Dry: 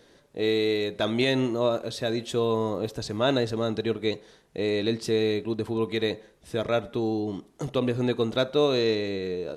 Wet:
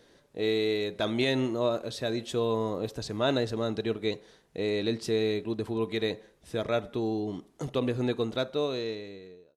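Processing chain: ending faded out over 1.51 s; gain -3 dB

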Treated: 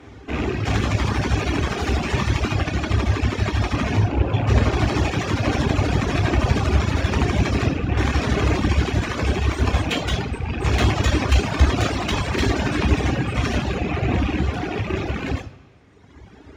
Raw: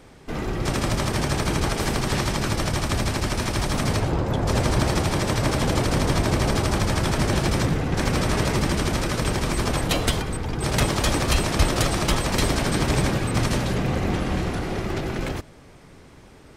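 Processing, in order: rattling part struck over -28 dBFS, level -22 dBFS; high shelf 6800 Hz -6.5 dB, from 2.54 s -12 dB, from 4.76 s -6.5 dB; one-sided clip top -27 dBFS; bell 12000 Hz -8.5 dB 1.5 oct; de-hum 124.1 Hz, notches 28; reverb RT60 1.0 s, pre-delay 3 ms, DRR 2 dB; reverb removal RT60 1.9 s

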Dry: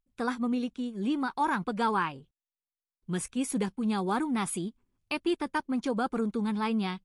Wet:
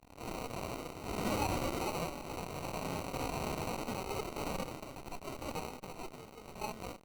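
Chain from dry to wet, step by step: delta modulation 64 kbps, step -45.5 dBFS; LPF 9200 Hz 24 dB/oct; low shelf 340 Hz -9 dB; echoes that change speed 0.193 s, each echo +4 st, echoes 3; differentiator; sample-rate reducer 1700 Hz, jitter 0%; added harmonics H 3 -26 dB, 4 -22 dB, 7 -27 dB, 8 -19 dB, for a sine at -34.5 dBFS; harmonic-percussive split percussive -16 dB; gain +15.5 dB

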